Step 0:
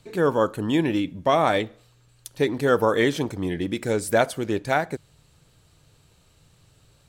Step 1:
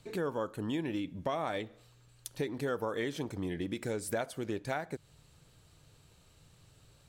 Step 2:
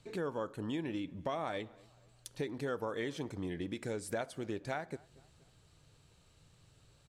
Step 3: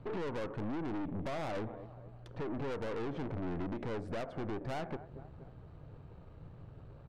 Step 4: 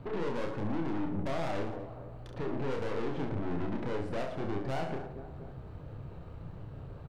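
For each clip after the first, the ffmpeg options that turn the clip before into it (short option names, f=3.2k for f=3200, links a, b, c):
-af "acompressor=threshold=-31dB:ratio=3,volume=-3.5dB"
-filter_complex "[0:a]lowpass=10k,asplit=2[a][b];[b]adelay=236,lowpass=f=2k:p=1,volume=-23.5dB,asplit=2[c][d];[d]adelay=236,lowpass=f=2k:p=1,volume=0.47,asplit=2[e][f];[f]adelay=236,lowpass=f=2k:p=1,volume=0.47[g];[a][c][e][g]amix=inputs=4:normalize=0,volume=-3dB"
-af "lowpass=1k,acompressor=threshold=-40dB:ratio=6,aeval=exprs='(tanh(398*val(0)+0.55)-tanh(0.55))/398':c=same,volume=16dB"
-filter_complex "[0:a]asplit=2[a][b];[b]alimiter=level_in=19.5dB:limit=-24dB:level=0:latency=1,volume=-19.5dB,volume=1dB[c];[a][c]amix=inputs=2:normalize=0,aecho=1:1:30|67.5|114.4|173|246.2:0.631|0.398|0.251|0.158|0.1,volume=-1dB"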